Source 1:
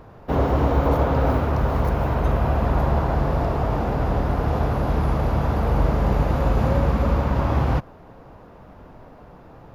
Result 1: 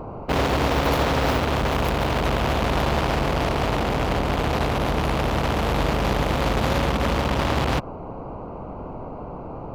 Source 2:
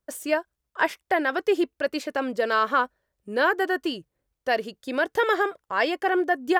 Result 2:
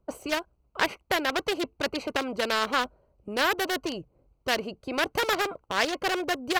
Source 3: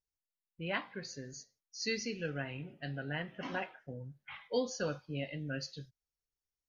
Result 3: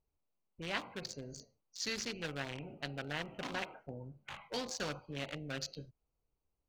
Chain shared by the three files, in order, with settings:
Wiener smoothing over 25 samples; spectral compressor 2:1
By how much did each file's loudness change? -0.5, -3.0, -2.0 LU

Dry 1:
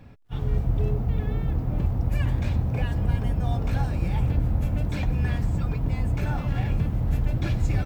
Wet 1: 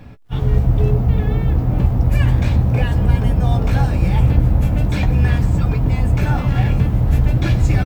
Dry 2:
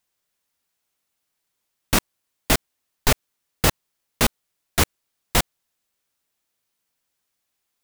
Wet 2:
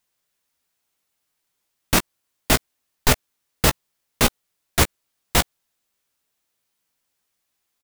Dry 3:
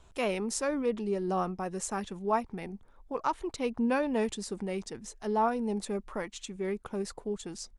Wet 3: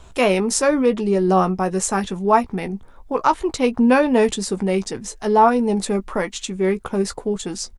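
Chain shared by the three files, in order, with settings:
doubler 16 ms -10 dB; normalise peaks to -2 dBFS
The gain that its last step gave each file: +9.0, +1.0, +13.0 dB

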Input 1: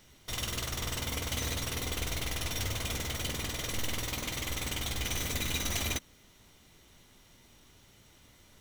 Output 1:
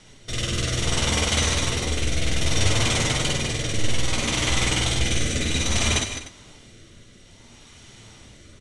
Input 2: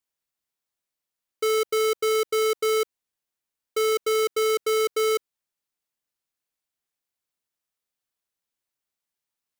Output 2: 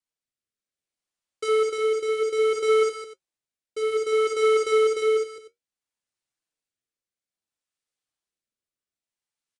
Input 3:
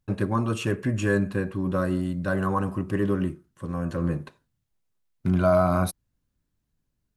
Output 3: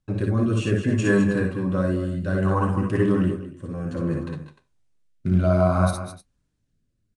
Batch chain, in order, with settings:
tapped delay 55/64/190/210/303 ms -5.5/-5.5/-15.5/-10.5/-17.5 dB; flange 0.31 Hz, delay 6.2 ms, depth 9.7 ms, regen -59%; rotary speaker horn 0.6 Hz; downsampling 22050 Hz; match loudness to -23 LUFS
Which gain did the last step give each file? +16.0, +2.0, +7.0 dB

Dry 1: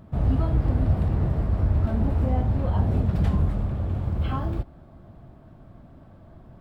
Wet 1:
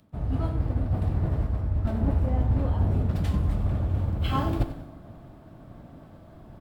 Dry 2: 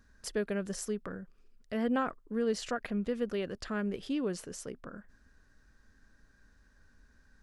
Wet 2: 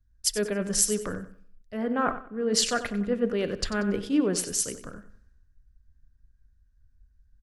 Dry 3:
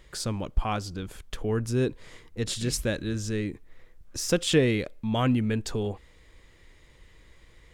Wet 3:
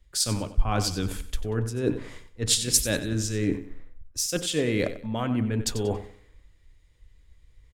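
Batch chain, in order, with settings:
high shelf 6900 Hz +5 dB; reverse; compressor 12:1, threshold -33 dBFS; reverse; vibrato 7.7 Hz 8.9 cents; on a send: feedback echo 94 ms, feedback 44%, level -11 dB; on the sum: FDN reverb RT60 0.5 s, low-frequency decay 1×, high-frequency decay 0.3×, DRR 13.5 dB; three-band expander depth 100%; match loudness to -27 LUFS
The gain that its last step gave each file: +10.5, +9.0, +9.0 dB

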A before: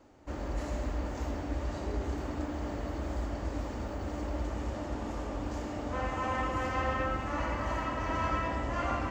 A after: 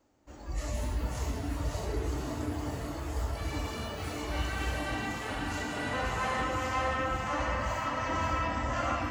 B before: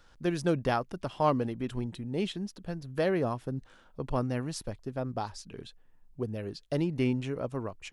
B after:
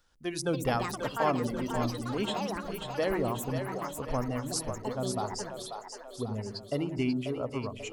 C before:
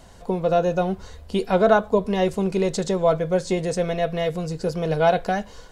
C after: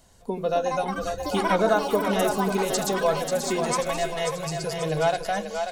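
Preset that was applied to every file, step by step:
spectral noise reduction 12 dB; high shelf 5300 Hz +11 dB; in parallel at +2.5 dB: compressor, threshold -29 dBFS; on the sum: echoes that change speed 0.364 s, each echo +7 st, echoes 2, each echo -6 dB; split-band echo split 400 Hz, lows 82 ms, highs 0.538 s, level -6.5 dB; gain -6.5 dB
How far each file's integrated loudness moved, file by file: +1.5, 0.0, -2.5 LU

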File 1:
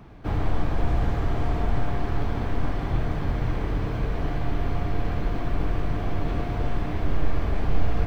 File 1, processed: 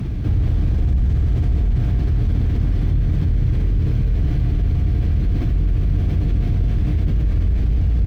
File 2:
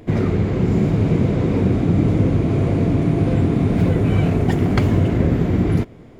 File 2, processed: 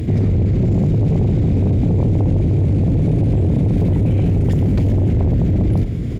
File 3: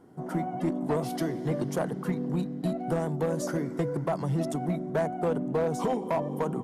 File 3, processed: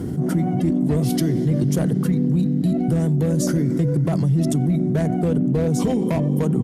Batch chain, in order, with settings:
HPF 47 Hz 24 dB/oct; passive tone stack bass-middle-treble 10-0-1; in parallel at -10.5 dB: sine folder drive 12 dB, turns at -17.5 dBFS; on the sum: speakerphone echo 90 ms, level -23 dB; fast leveller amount 70%; normalise peaks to -9 dBFS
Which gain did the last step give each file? +9.0, +9.5, +14.0 dB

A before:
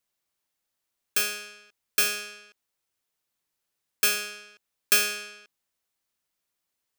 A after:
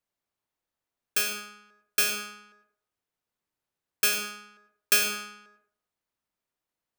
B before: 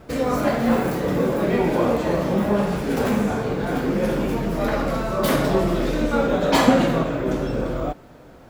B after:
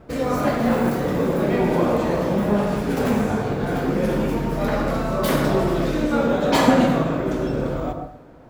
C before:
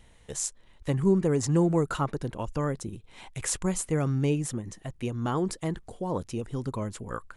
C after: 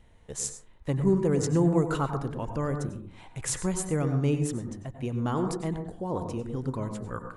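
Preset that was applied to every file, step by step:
plate-style reverb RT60 0.57 s, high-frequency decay 0.3×, pre-delay 85 ms, DRR 6.5 dB; mismatched tape noise reduction decoder only; gain -1 dB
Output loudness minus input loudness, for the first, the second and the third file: -1.0, +0.5, 0.0 LU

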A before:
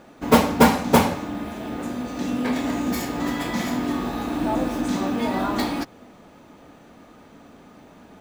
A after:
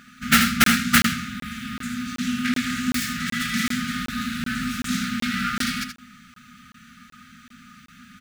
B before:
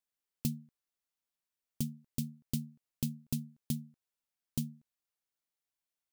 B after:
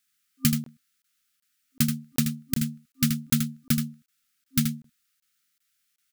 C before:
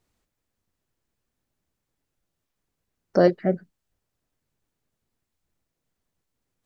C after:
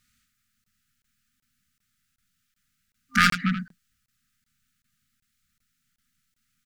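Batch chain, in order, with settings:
self-modulated delay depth 0.65 ms; FFT band-reject 260–1200 Hz; low shelf 240 Hz -9.5 dB; soft clip -12.5 dBFS; on a send: echo 79 ms -7.5 dB; on the sum: crackling interface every 0.38 s, samples 1024, zero, from 0.64; normalise peaks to -6 dBFS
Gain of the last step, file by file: +6.5, +17.0, +9.0 dB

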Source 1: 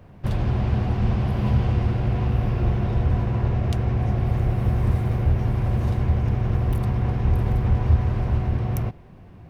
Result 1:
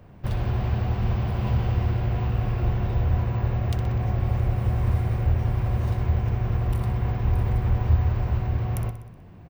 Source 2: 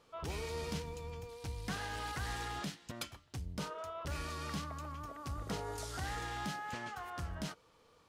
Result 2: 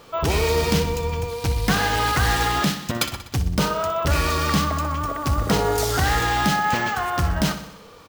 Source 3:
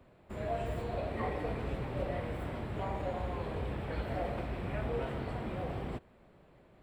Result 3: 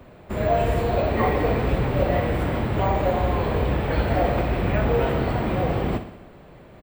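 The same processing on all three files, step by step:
dynamic EQ 240 Hz, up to -5 dB, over -36 dBFS, Q 0.94; on a send: feedback echo 62 ms, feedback 60%, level -11.5 dB; on the sum: careless resampling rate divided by 2×, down none, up hold; normalise peaks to -9 dBFS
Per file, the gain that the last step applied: -1.5, +19.5, +14.0 dB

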